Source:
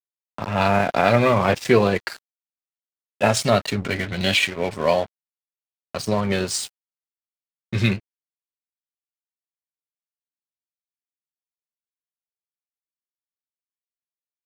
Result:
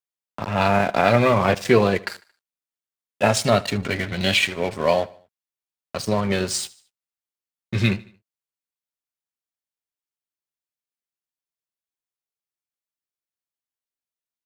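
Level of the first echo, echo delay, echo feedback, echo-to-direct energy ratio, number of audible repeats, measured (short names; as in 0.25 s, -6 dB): -21.5 dB, 75 ms, 47%, -20.5 dB, 3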